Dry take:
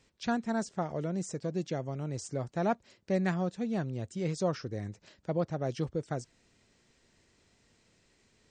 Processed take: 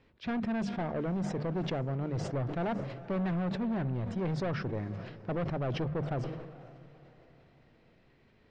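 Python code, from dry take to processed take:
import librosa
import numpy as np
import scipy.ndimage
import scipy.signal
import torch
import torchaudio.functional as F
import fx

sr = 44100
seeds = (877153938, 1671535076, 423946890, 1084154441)

y = fx.hum_notches(x, sr, base_hz=50, count=4)
y = np.clip(10.0 ** (34.0 / 20.0) * y, -1.0, 1.0) / 10.0 ** (34.0 / 20.0)
y = fx.air_absorb(y, sr, metres=370.0)
y = fx.echo_diffused(y, sr, ms=490, feedback_pct=41, wet_db=-16.0)
y = fx.sustainer(y, sr, db_per_s=47.0)
y = F.gain(torch.from_numpy(y), 5.0).numpy()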